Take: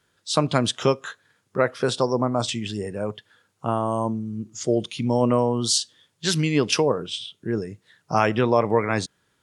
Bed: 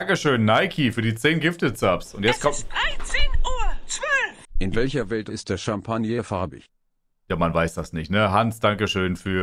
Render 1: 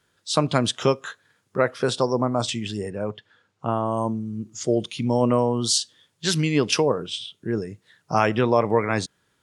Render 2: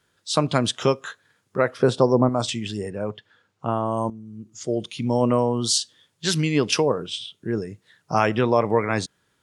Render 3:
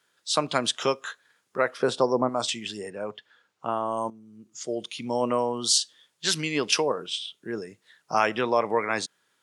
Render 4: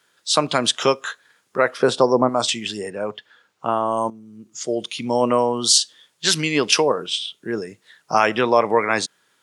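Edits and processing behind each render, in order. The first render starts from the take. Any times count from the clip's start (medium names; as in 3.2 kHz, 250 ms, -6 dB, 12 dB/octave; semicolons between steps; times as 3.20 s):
2.90–3.97 s: distance through air 86 m
1.77–2.29 s: tilt shelf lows +6 dB, about 1.3 kHz; 4.10–5.17 s: fade in, from -13 dB
high-pass 160 Hz 12 dB/octave; bass shelf 420 Hz -10.5 dB
trim +7 dB; peak limiter -3 dBFS, peak gain reduction 3 dB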